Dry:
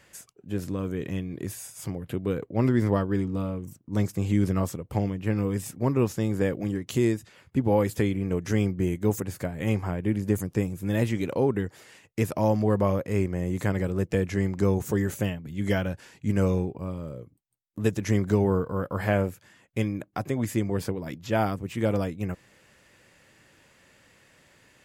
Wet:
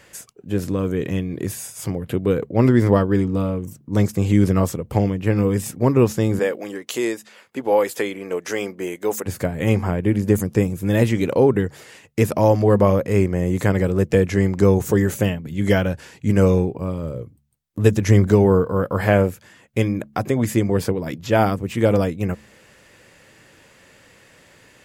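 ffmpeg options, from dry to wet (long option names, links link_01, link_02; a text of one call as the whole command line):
ffmpeg -i in.wav -filter_complex "[0:a]asettb=1/sr,asplit=3[link_01][link_02][link_03];[link_01]atrim=end=6.394[link_04];[link_02]atrim=start=6.39:end=9.26,asetpts=PTS-STARTPTS,afade=type=in:duration=0.004:curve=qsin,afade=type=out:start_time=2.866:duration=0.004:curve=qsin,highpass=490[link_05];[link_03]atrim=start=9.256[link_06];[link_04][link_05]acrossfade=duration=0.004:curve1=hsin:curve2=qsin[link_07];[link_07][link_06]acrossfade=duration=0.004:curve1=qsin:curve2=hsin,asettb=1/sr,asplit=3[link_08][link_09][link_10];[link_08]atrim=end=17.034[link_11];[link_09]atrim=start=17.03:end=18.27,asetpts=PTS-STARTPTS,afade=type=in:duration=0.004:curve=qsin,afade=type=out:start_time=1.236:duration=0.004:curve=qsin,equalizer=frequency=89:width_type=o:width=0.77:gain=6.5[link_12];[link_10]atrim=start=18.266[link_13];[link_11][link_12]acrossfade=duration=0.004:curve1=hsin:curve2=qsin[link_14];[link_14][link_13]acrossfade=duration=0.004:curve1=qsin:curve2=hsin,equalizer=frequency=470:width_type=o:width=0.44:gain=3,bandreject=frequency=71.57:width_type=h:width=4,bandreject=frequency=143.14:width_type=h:width=4,bandreject=frequency=214.71:width_type=h:width=4,volume=7.5dB" out.wav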